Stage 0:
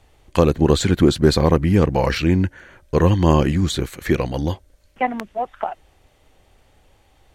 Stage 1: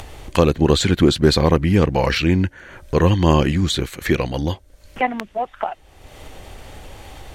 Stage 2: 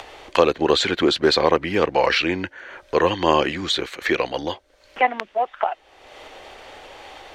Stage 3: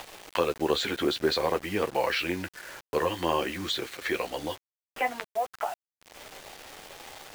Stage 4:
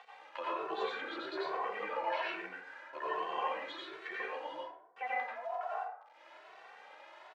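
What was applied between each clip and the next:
dynamic equaliser 3,100 Hz, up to +5 dB, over −39 dBFS, Q 0.84; upward compression, threshold −21 dBFS
three-way crossover with the lows and the highs turned down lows −21 dB, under 350 Hz, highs −16 dB, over 5,600 Hz; level +2.5 dB
in parallel at −0.5 dB: downward compressor 6 to 1, threshold −26 dBFS, peak gain reduction 15.5 dB; on the sum: flanger 0.53 Hz, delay 8.3 ms, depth 6.4 ms, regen −27%; bit reduction 6 bits; level −7.5 dB
band-pass filter 700–2,300 Hz; dense smooth reverb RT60 0.81 s, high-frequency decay 0.4×, pre-delay 75 ms, DRR −5.5 dB; barber-pole flanger 2.2 ms +1.2 Hz; level −8 dB

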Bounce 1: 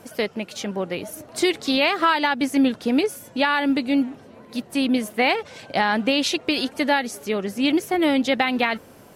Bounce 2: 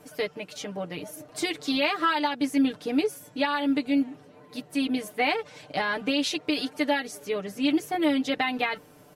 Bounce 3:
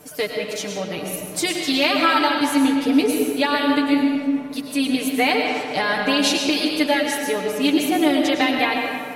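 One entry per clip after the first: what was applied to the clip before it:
comb filter 6.7 ms, depth 89%; level −8 dB
high-shelf EQ 5,800 Hz +9.5 dB; comb and all-pass reverb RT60 2.1 s, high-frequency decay 0.55×, pre-delay 70 ms, DRR 1 dB; level +4.5 dB

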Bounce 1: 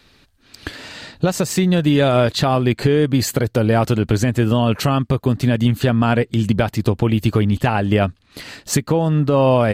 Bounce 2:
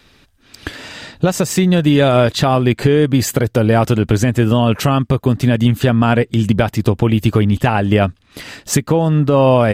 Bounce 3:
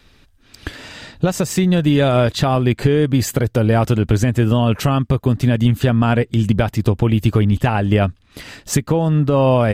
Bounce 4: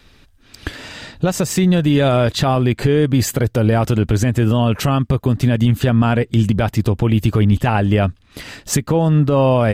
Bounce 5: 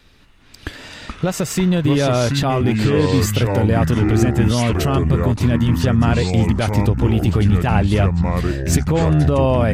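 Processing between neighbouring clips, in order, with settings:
notch filter 4,300 Hz, Q 9.8; level +3 dB
low-shelf EQ 81 Hz +9 dB; level −3.5 dB
boost into a limiter +6 dB; level −4 dB
delay with pitch and tempo change per echo 204 ms, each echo −5 semitones, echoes 2; level −2.5 dB

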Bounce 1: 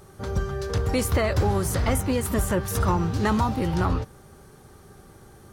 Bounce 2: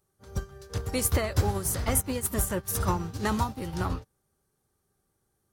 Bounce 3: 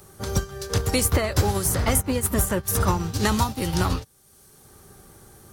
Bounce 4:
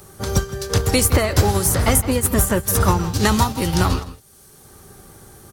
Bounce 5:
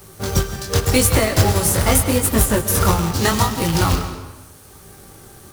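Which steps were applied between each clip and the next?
high-shelf EQ 5,700 Hz +11.5 dB; expander for the loud parts 2.5 to 1, over −36 dBFS
multiband upward and downward compressor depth 70%; level +5.5 dB
slap from a distant wall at 28 metres, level −15 dB; level +5 dB
chorus effect 0.83 Hz, delay 18 ms, depth 6.4 ms; log-companded quantiser 4 bits; comb and all-pass reverb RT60 1.3 s, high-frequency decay 0.8×, pre-delay 85 ms, DRR 10.5 dB; level +3.5 dB

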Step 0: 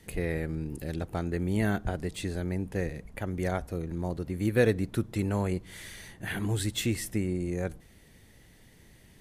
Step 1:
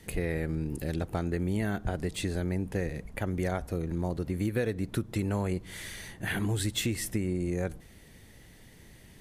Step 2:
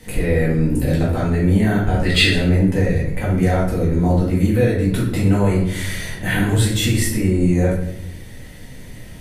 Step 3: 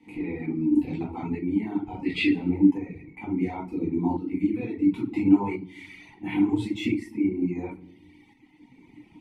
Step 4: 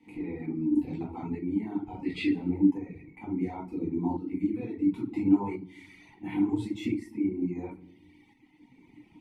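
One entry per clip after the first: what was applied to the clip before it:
downward compressor 6 to 1, threshold −29 dBFS, peak gain reduction 11 dB; level +3 dB
brickwall limiter −23 dBFS, peak gain reduction 6 dB; gain on a spectral selection 0:02.05–0:02.31, 1,200–5,200 Hz +12 dB; rectangular room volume 160 cubic metres, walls mixed, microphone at 2 metres; level +6 dB
formant filter u; reverb reduction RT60 1.5 s; shaped tremolo saw up 0.72 Hz, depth 55%; level +8 dB
dynamic equaliser 2,700 Hz, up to −6 dB, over −51 dBFS, Q 1.3; level −4 dB

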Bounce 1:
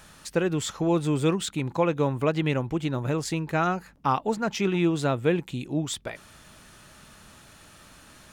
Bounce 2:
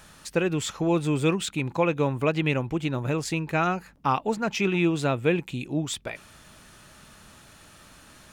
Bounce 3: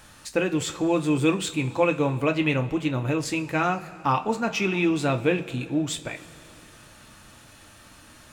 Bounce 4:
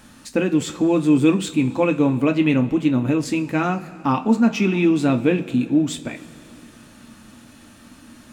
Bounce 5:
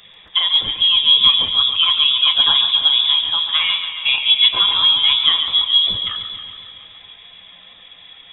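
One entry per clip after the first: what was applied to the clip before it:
dynamic equaliser 2,500 Hz, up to +7 dB, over −51 dBFS, Q 4.4
coupled-rooms reverb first 0.24 s, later 3.2 s, from −20 dB, DRR 5 dB
parametric band 240 Hz +15 dB 0.73 octaves
spectral magnitudes quantised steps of 15 dB; voice inversion scrambler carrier 3,600 Hz; feedback echo with a swinging delay time 139 ms, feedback 67%, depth 61 cents, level −9 dB; level +2.5 dB

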